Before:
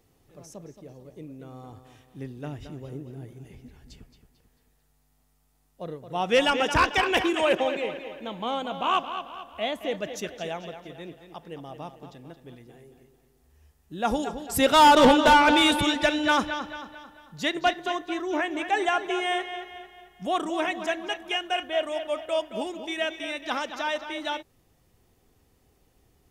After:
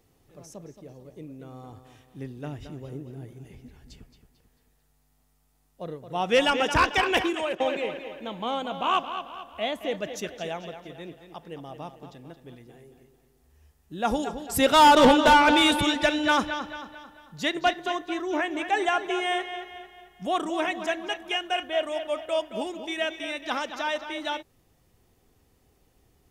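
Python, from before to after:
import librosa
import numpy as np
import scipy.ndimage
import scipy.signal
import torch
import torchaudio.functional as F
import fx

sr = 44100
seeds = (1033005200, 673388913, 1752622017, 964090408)

y = fx.edit(x, sr, fx.fade_out_to(start_s=7.17, length_s=0.43, floor_db=-12.5), tone=tone)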